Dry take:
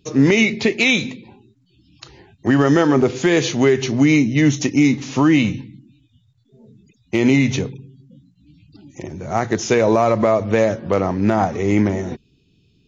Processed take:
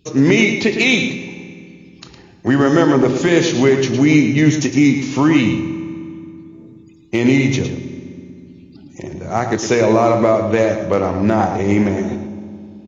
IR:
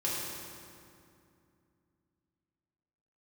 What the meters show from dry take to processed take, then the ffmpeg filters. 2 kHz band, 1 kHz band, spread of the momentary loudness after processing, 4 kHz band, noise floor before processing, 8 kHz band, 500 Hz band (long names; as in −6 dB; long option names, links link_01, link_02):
+2.0 dB, +2.0 dB, 18 LU, +2.0 dB, −60 dBFS, can't be measured, +2.0 dB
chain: -filter_complex "[0:a]asplit=2[link_01][link_02];[link_02]adelay=110.8,volume=-8dB,highshelf=frequency=4000:gain=-2.49[link_03];[link_01][link_03]amix=inputs=2:normalize=0,asplit=2[link_04][link_05];[1:a]atrim=start_sample=2205,adelay=24[link_06];[link_05][link_06]afir=irnorm=-1:irlink=0,volume=-17dB[link_07];[link_04][link_07]amix=inputs=2:normalize=0,volume=1dB"